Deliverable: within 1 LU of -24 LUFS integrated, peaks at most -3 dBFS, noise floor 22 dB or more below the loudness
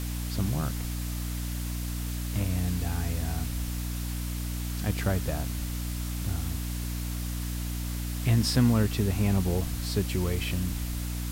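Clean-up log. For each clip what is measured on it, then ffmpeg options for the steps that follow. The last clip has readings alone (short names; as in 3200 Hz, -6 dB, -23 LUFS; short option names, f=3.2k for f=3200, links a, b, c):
hum 60 Hz; harmonics up to 300 Hz; hum level -30 dBFS; noise floor -33 dBFS; noise floor target -52 dBFS; loudness -30.0 LUFS; peak -10.5 dBFS; loudness target -24.0 LUFS
-> -af "bandreject=f=60:t=h:w=6,bandreject=f=120:t=h:w=6,bandreject=f=180:t=h:w=6,bandreject=f=240:t=h:w=6,bandreject=f=300:t=h:w=6"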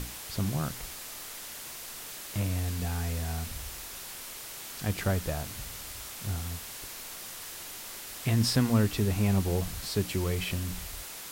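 hum none; noise floor -42 dBFS; noise floor target -55 dBFS
-> -af "afftdn=nr=13:nf=-42"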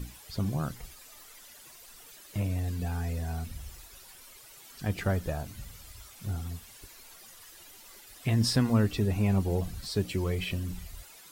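noise floor -52 dBFS; noise floor target -53 dBFS
-> -af "afftdn=nr=6:nf=-52"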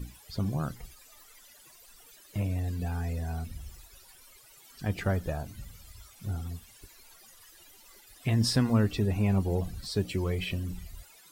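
noise floor -56 dBFS; loudness -31.0 LUFS; peak -12.0 dBFS; loudness target -24.0 LUFS
-> -af "volume=7dB"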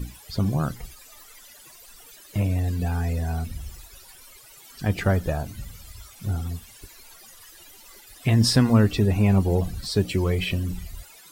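loudness -24.0 LUFS; peak -5.0 dBFS; noise floor -49 dBFS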